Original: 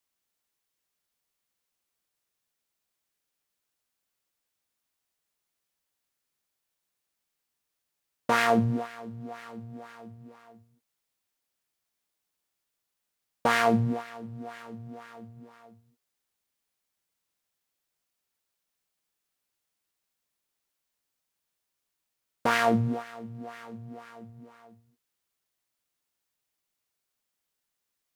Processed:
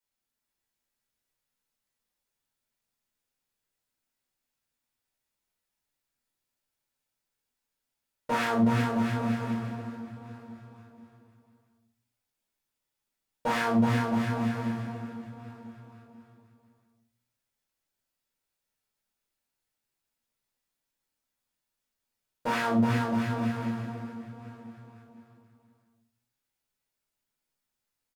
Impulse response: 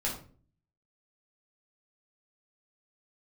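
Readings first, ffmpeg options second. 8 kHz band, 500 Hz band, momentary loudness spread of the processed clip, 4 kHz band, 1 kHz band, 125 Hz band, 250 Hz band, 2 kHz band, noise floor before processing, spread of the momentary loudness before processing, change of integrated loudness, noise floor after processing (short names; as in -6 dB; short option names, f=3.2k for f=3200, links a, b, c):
-3.0 dB, -3.0 dB, 21 LU, -2.5 dB, -2.0 dB, +2.5 dB, +4.5 dB, -2.5 dB, -83 dBFS, 21 LU, -2.0 dB, under -85 dBFS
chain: -filter_complex "[0:a]aecho=1:1:370|666|902.8|1092|1244:0.631|0.398|0.251|0.158|0.1[a];[1:a]atrim=start_sample=2205[b];[a][b]afir=irnorm=-1:irlink=0,volume=-8.5dB"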